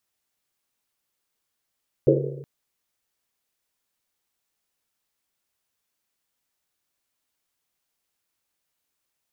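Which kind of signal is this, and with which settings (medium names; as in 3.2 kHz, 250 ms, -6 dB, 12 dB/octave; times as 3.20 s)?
Risset drum length 0.37 s, pitch 140 Hz, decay 1.29 s, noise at 430 Hz, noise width 200 Hz, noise 65%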